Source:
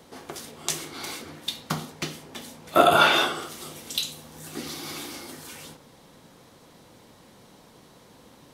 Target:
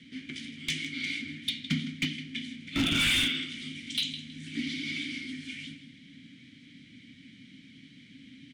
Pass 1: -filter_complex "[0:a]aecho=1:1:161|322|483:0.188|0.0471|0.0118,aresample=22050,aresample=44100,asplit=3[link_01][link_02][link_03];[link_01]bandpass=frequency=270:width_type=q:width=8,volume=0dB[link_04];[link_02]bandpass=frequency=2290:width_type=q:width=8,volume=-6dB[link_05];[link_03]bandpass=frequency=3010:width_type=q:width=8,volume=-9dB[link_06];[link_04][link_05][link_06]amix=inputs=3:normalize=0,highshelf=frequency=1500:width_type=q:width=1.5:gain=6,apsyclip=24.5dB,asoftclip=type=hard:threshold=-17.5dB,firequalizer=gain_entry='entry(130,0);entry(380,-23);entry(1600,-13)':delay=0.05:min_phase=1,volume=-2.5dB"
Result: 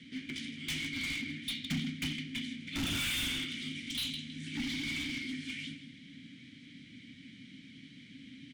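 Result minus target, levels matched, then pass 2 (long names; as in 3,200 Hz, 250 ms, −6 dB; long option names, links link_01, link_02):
hard clipping: distortion +8 dB
-filter_complex "[0:a]aecho=1:1:161|322|483:0.188|0.0471|0.0118,aresample=22050,aresample=44100,asplit=3[link_01][link_02][link_03];[link_01]bandpass=frequency=270:width_type=q:width=8,volume=0dB[link_04];[link_02]bandpass=frequency=2290:width_type=q:width=8,volume=-6dB[link_05];[link_03]bandpass=frequency=3010:width_type=q:width=8,volume=-9dB[link_06];[link_04][link_05][link_06]amix=inputs=3:normalize=0,highshelf=frequency=1500:width_type=q:width=1.5:gain=6,apsyclip=24.5dB,asoftclip=type=hard:threshold=-7.5dB,firequalizer=gain_entry='entry(130,0);entry(380,-23);entry(1600,-13)':delay=0.05:min_phase=1,volume=-2.5dB"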